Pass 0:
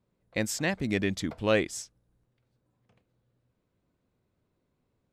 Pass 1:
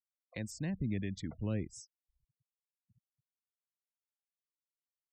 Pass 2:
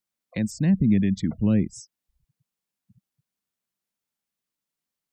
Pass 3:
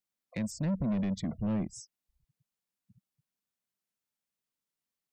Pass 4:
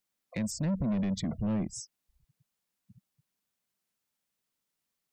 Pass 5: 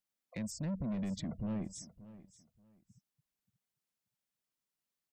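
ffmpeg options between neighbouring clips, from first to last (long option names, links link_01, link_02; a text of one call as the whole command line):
ffmpeg -i in.wav -filter_complex "[0:a]acrossover=split=430[link_01][link_02];[link_01]aeval=exprs='val(0)*(1-0.5/2+0.5/2*cos(2*PI*1.3*n/s))':channel_layout=same[link_03];[link_02]aeval=exprs='val(0)*(1-0.5/2-0.5/2*cos(2*PI*1.3*n/s))':channel_layout=same[link_04];[link_03][link_04]amix=inputs=2:normalize=0,acrossover=split=210[link_05][link_06];[link_06]acompressor=threshold=-52dB:ratio=2.5[link_07];[link_05][link_07]amix=inputs=2:normalize=0,afftfilt=real='re*gte(hypot(re,im),0.00282)':imag='im*gte(hypot(re,im),0.00282)':win_size=1024:overlap=0.75,volume=1dB" out.wav
ffmpeg -i in.wav -af "equalizer=frequency=200:width_type=o:width=1:gain=10,volume=8.5dB" out.wav
ffmpeg -i in.wav -af "asoftclip=type=tanh:threshold=-22.5dB,volume=-4.5dB" out.wav
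ffmpeg -i in.wav -af "alimiter=level_in=8dB:limit=-24dB:level=0:latency=1:release=30,volume=-8dB,volume=5.5dB" out.wav
ffmpeg -i in.wav -af "aecho=1:1:580|1160:0.141|0.0311,volume=-7dB" out.wav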